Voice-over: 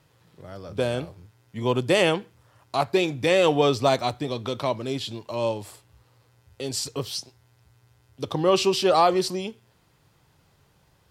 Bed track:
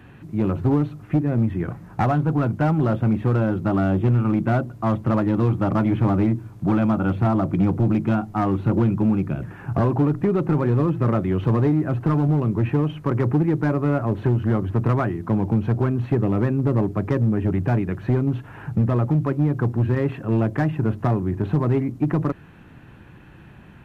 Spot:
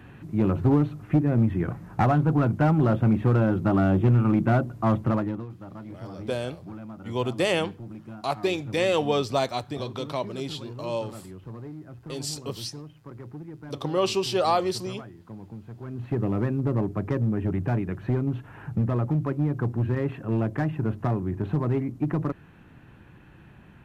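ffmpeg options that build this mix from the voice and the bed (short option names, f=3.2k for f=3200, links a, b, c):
-filter_complex "[0:a]adelay=5500,volume=-4dB[a];[1:a]volume=14.5dB,afade=t=out:st=4.98:d=0.48:silence=0.105925,afade=t=in:st=15.81:d=0.42:silence=0.16788[b];[a][b]amix=inputs=2:normalize=0"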